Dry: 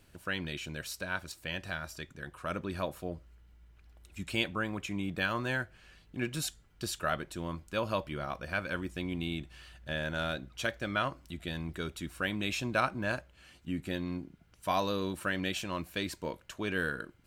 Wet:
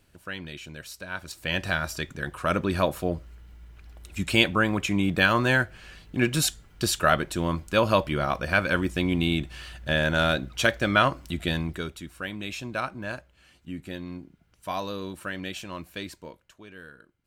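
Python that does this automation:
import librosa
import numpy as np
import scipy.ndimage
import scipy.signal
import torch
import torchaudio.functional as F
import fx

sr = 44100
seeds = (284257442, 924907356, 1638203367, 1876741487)

y = fx.gain(x, sr, db=fx.line((1.06, -1.0), (1.58, 11.0), (11.52, 11.0), (12.07, -1.0), (16.03, -1.0), (16.69, -13.0)))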